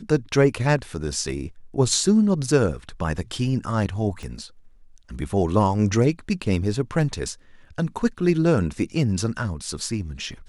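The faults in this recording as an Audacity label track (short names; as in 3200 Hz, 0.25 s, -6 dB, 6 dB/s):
4.230000	4.230000	pop -24 dBFS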